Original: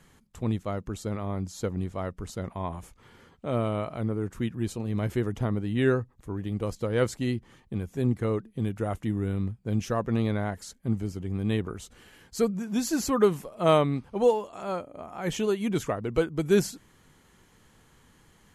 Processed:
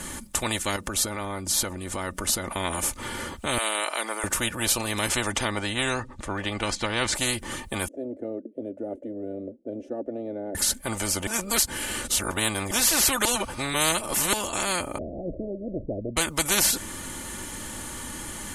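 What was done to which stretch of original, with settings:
0:00.76–0:02.51: downward compressor 4 to 1, threshold −39 dBFS
0:03.58–0:04.24: high-pass filter 630 Hz 24 dB per octave
0:05.08–0:07.14: low-pass filter 8,200 Hz → 3,200 Hz
0:07.88–0:10.55: elliptic band-pass filter 270–590 Hz
0:11.27–0:12.71: reverse
0:13.25–0:14.33: reverse
0:14.98–0:16.17: Butterworth low-pass 630 Hz 96 dB per octave
whole clip: parametric band 9,200 Hz +12 dB 0.77 octaves; comb filter 3.4 ms, depth 58%; every bin compressed towards the loudest bin 4 to 1; level +2.5 dB

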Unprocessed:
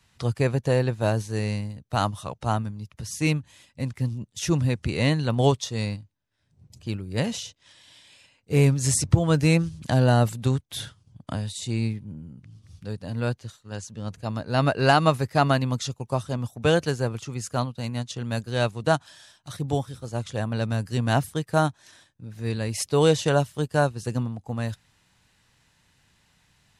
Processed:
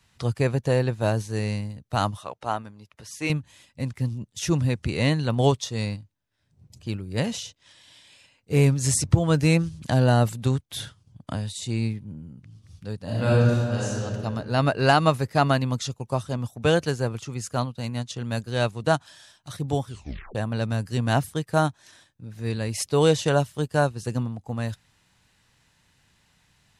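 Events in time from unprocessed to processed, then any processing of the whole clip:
0:02.17–0:03.30: bass and treble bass −14 dB, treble −6 dB
0:13.03–0:14.01: thrown reverb, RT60 2.3 s, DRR −7.5 dB
0:19.87: tape stop 0.48 s

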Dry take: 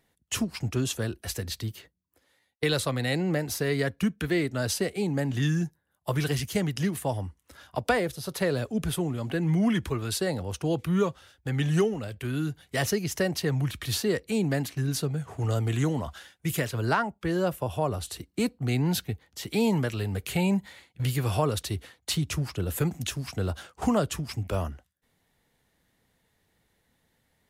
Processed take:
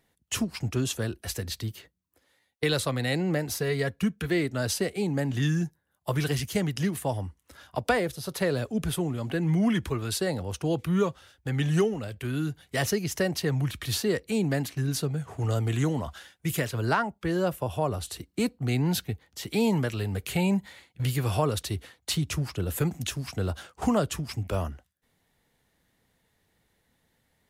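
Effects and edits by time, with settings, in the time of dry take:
0:03.59–0:04.29: notch comb filter 300 Hz

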